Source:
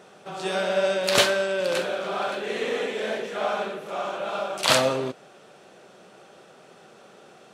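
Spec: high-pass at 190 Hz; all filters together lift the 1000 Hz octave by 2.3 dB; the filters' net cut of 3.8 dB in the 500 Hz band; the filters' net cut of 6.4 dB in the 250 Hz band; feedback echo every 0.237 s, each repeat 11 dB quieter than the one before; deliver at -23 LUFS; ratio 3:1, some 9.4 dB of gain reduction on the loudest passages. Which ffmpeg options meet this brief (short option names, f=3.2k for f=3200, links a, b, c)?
-af "highpass=190,equalizer=f=250:t=o:g=-5.5,equalizer=f=500:t=o:g=-5,equalizer=f=1k:t=o:g=5,acompressor=threshold=-27dB:ratio=3,aecho=1:1:237|474|711:0.282|0.0789|0.0221,volume=7dB"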